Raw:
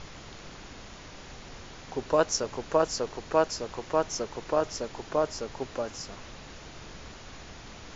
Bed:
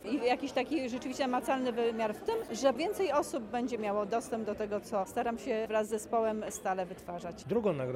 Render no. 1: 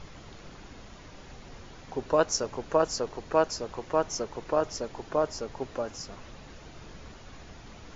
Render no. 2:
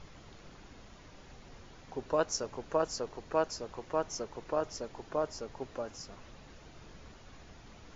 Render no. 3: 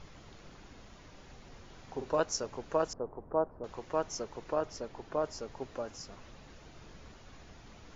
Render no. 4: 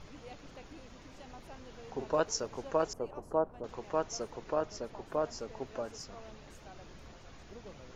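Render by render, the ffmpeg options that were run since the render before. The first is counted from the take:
ffmpeg -i in.wav -af "afftdn=noise_reduction=6:noise_floor=-46" out.wav
ffmpeg -i in.wav -af "volume=-6dB" out.wav
ffmpeg -i in.wav -filter_complex "[0:a]asettb=1/sr,asplit=3[link_01][link_02][link_03];[link_01]atrim=end=1.654[link_04];[link_02]atrim=start=1.65:end=2.2,asetpts=PTS-STARTPTS,afade=type=in:duration=0.004:curve=qsin,afade=type=out:start_time=0.546:duration=0.004:curve=qsin,asplit=2[link_05][link_06];[link_06]adelay=45,volume=-6.5dB[link_07];[link_05][link_07]amix=inputs=2:normalize=0,atrim=end_sample=24255[link_08];[link_03]atrim=start=2.196[link_09];[link_04][link_08]acrossfade=duration=0.004:curve1=hsin:curve2=qsin[link_10];[link_10][link_09]acrossfade=duration=0.004:curve1=qsin:curve2=hsin,asettb=1/sr,asplit=3[link_11][link_12][link_13];[link_11]atrim=end=2.934[link_14];[link_12]atrim=start=2.93:end=3.64,asetpts=PTS-STARTPTS,afade=type=in:duration=0.004:curve=qsin,afade=type=out:start_time=0.706:duration=0.004:curve=qsin,lowpass=frequency=1100:width=0.5412,lowpass=frequency=1100:width=1.3066[link_15];[link_13]atrim=start=3.636[link_16];[link_14][link_15]acrossfade=duration=0.004:curve1=hsin:curve2=qsin[link_17];[link_17][link_16]acrossfade=duration=0.004:curve1=qsin:curve2=hsin,asettb=1/sr,asplit=3[link_18][link_19][link_20];[link_18]atrim=end=4.544[link_21];[link_19]atrim=start=4.54:end=5.24,asetpts=PTS-STARTPTS,afade=type=in:duration=0.004:curve=qsin,afade=type=out:start_time=0.696:duration=0.004:curve=qsin,highshelf=frequency=6800:gain=-8.5[link_22];[link_20]atrim=start=5.236[link_23];[link_21][link_22]acrossfade=duration=0.004:curve1=hsin:curve2=qsin[link_24];[link_24][link_23]acrossfade=duration=0.004:curve1=qsin:curve2=hsin" out.wav
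ffmpeg -i in.wav -i bed.wav -filter_complex "[1:a]volume=-21dB[link_01];[0:a][link_01]amix=inputs=2:normalize=0" out.wav

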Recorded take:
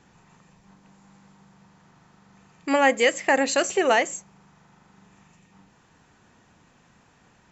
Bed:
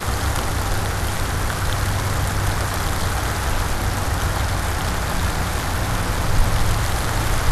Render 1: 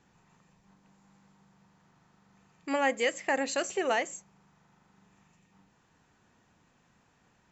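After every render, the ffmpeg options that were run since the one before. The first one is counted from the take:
ffmpeg -i in.wav -af "volume=-8.5dB" out.wav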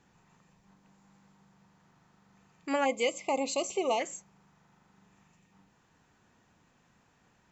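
ffmpeg -i in.wav -filter_complex "[0:a]asplit=3[link_01][link_02][link_03];[link_01]afade=type=out:start_time=2.84:duration=0.02[link_04];[link_02]asuperstop=centerf=1600:order=20:qfactor=2,afade=type=in:start_time=2.84:duration=0.02,afade=type=out:start_time=3.99:duration=0.02[link_05];[link_03]afade=type=in:start_time=3.99:duration=0.02[link_06];[link_04][link_05][link_06]amix=inputs=3:normalize=0" out.wav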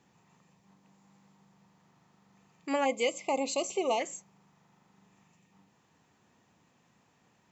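ffmpeg -i in.wav -af "highpass=98,equalizer=frequency=1500:width_type=o:width=0.33:gain=-6" out.wav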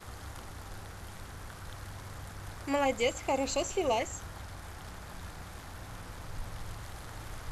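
ffmpeg -i in.wav -i bed.wav -filter_complex "[1:a]volume=-23dB[link_01];[0:a][link_01]amix=inputs=2:normalize=0" out.wav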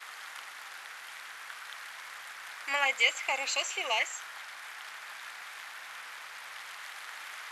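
ffmpeg -i in.wav -af "highpass=1000,equalizer=frequency=2200:width=0.79:gain=11" out.wav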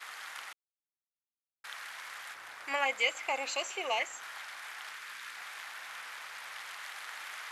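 ffmpeg -i in.wav -filter_complex "[0:a]asettb=1/sr,asplit=3[link_01][link_02][link_03];[link_01]atrim=end=2.344[link_04];[link_02]atrim=start=2.34:end=4.23,asetpts=PTS-STARTPTS,afade=type=in:duration=0.004:curve=qsin,afade=type=out:start_time=1.886:duration=0.004:curve=qsin,tiltshelf=frequency=790:gain=5.5[link_05];[link_03]atrim=start=4.226[link_06];[link_04][link_05]acrossfade=duration=0.004:curve1=hsin:curve2=qsin[link_07];[link_07][link_06]acrossfade=duration=0.004:curve1=qsin:curve2=hsin,asettb=1/sr,asplit=3[link_08][link_09][link_10];[link_08]atrim=end=4.934[link_11];[link_09]atrim=start=4.93:end=5.37,asetpts=PTS-STARTPTS,afade=type=in:duration=0.004:curve=qsin,afade=type=out:start_time=0.436:duration=0.004:curve=qsin,equalizer=frequency=720:width_type=o:width=0.59:gain=-10.5[link_12];[link_10]atrim=start=5.366[link_13];[link_11][link_12]acrossfade=duration=0.004:curve1=hsin:curve2=qsin[link_14];[link_14][link_13]acrossfade=duration=0.004:curve1=qsin:curve2=hsin,asplit=3[link_15][link_16][link_17];[link_15]atrim=end=0.53,asetpts=PTS-STARTPTS,afade=type=out:start_time=0.526:duration=0.004:curve=hsin[link_18];[link_16]atrim=start=0.53:end=1.64,asetpts=PTS-STARTPTS,volume=0[link_19];[link_17]atrim=start=1.64,asetpts=PTS-STARTPTS,afade=type=in:duration=0.004:curve=hsin[link_20];[link_18][link_19][link_20]concat=n=3:v=0:a=1" out.wav

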